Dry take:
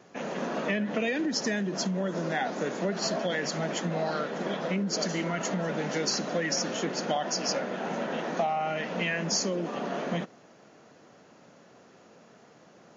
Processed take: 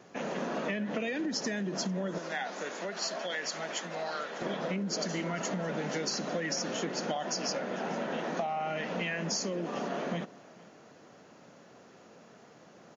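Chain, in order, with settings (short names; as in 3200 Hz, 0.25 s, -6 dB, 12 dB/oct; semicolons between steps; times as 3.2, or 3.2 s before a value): 2.18–4.42 HPF 1000 Hz 6 dB/oct; compressor 3:1, threshold -31 dBFS, peak gain reduction 6.5 dB; echo 0.448 s -22.5 dB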